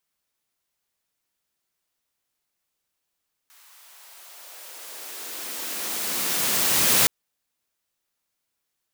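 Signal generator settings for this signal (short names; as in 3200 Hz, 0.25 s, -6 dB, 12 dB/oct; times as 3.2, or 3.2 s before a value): swept filtered noise white, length 3.57 s highpass, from 1100 Hz, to 110 Hz, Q 1.4, exponential, gain ramp +36.5 dB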